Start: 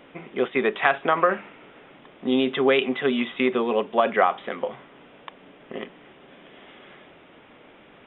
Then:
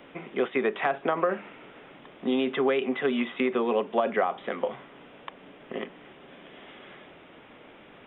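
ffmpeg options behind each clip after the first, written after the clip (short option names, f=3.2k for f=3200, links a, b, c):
-filter_complex "[0:a]acrossover=split=150|750|2900[a][b][c][d];[a]acompressor=threshold=-56dB:ratio=4[e];[b]acompressor=threshold=-23dB:ratio=4[f];[c]acompressor=threshold=-31dB:ratio=4[g];[d]acompressor=threshold=-51dB:ratio=4[h];[e][f][g][h]amix=inputs=4:normalize=0"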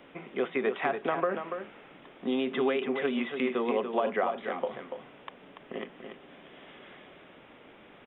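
-af "aecho=1:1:287:0.422,volume=-3.5dB"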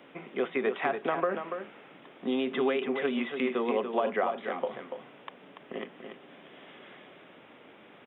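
-af "highpass=120"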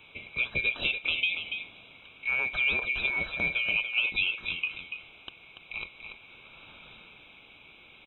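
-af "afftfilt=real='real(if(lt(b,920),b+92*(1-2*mod(floor(b/92),2)),b),0)':imag='imag(if(lt(b,920),b+92*(1-2*mod(floor(b/92),2)),b),0)':win_size=2048:overlap=0.75"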